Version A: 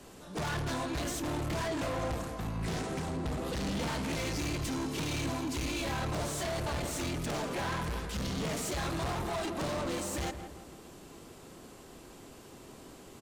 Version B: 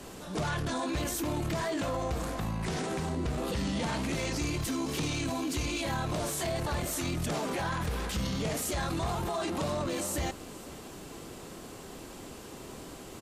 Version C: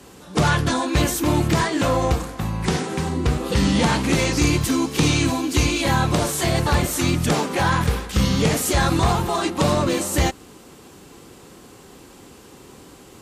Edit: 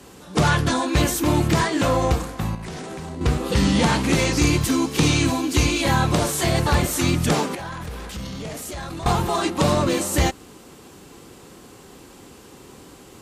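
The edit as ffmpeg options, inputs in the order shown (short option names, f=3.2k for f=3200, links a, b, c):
-filter_complex "[1:a]asplit=2[a][b];[2:a]asplit=3[c][d][e];[c]atrim=end=2.552[f];[a]atrim=start=2.548:end=3.212[g];[d]atrim=start=3.208:end=7.552[h];[b]atrim=start=7.548:end=9.062[i];[e]atrim=start=9.058[j];[f][g]acrossfade=d=0.004:c1=hsin:c2=hsin[k];[k][h]acrossfade=d=0.004:c1=hsin:c2=hsin[l];[l][i]acrossfade=d=0.004:c1=hsin:c2=hsin[m];[m][j]acrossfade=d=0.004:c1=hsin:c2=hsin"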